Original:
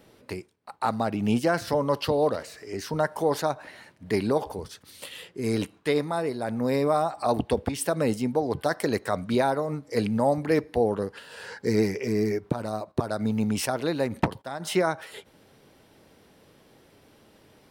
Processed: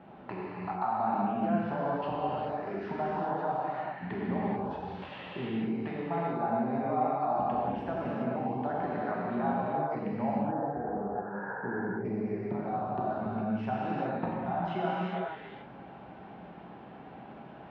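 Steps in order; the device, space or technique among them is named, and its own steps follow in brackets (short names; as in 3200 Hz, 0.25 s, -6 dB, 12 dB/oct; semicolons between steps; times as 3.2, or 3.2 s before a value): 10.38–12.05 elliptic low-pass 1600 Hz, stop band 50 dB; bass amplifier (compressor 5:1, threshold -40 dBFS, peak gain reduction 19.5 dB; speaker cabinet 69–2300 Hz, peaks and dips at 97 Hz -10 dB, 190 Hz +5 dB, 310 Hz -3 dB, 480 Hz -9 dB, 780 Hz +9 dB, 2000 Hz -7 dB); non-linear reverb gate 0.46 s flat, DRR -6.5 dB; gain +3 dB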